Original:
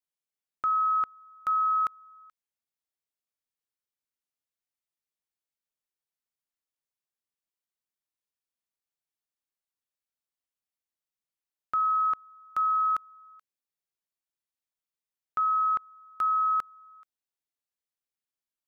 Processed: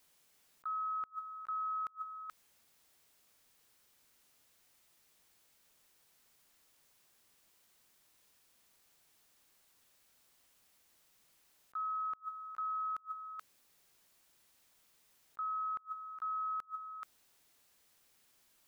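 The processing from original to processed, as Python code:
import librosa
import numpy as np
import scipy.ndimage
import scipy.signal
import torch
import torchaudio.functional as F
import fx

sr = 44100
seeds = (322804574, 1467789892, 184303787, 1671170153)

y = fx.gate_flip(x, sr, shuts_db=-35.0, range_db=-35)
y = fx.over_compress(y, sr, threshold_db=-58.0, ratio=-0.5)
y = y * librosa.db_to_amplitude(18.0)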